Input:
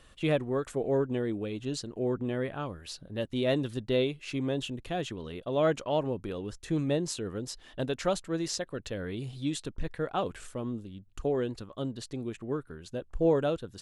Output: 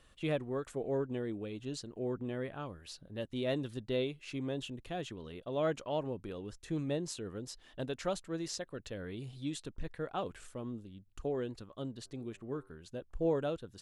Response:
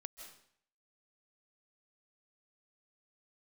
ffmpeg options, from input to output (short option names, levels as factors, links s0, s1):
-filter_complex "[0:a]asplit=3[s0][s1][s2];[s0]afade=t=out:st=12.04:d=0.02[s3];[s1]bandreject=f=97.2:t=h:w=4,bandreject=f=194.4:t=h:w=4,bandreject=f=291.6:t=h:w=4,bandreject=f=388.8:t=h:w=4,bandreject=f=486:t=h:w=4,bandreject=f=583.2:t=h:w=4,bandreject=f=680.4:t=h:w=4,bandreject=f=777.6:t=h:w=4,bandreject=f=874.8:t=h:w=4,bandreject=f=972:t=h:w=4,bandreject=f=1069.2:t=h:w=4,bandreject=f=1166.4:t=h:w=4,bandreject=f=1263.6:t=h:w=4,bandreject=f=1360.8:t=h:w=4,bandreject=f=1458:t=h:w=4,bandreject=f=1555.2:t=h:w=4,afade=t=in:st=12.04:d=0.02,afade=t=out:st=12.68:d=0.02[s4];[s2]afade=t=in:st=12.68:d=0.02[s5];[s3][s4][s5]amix=inputs=3:normalize=0,volume=0.473"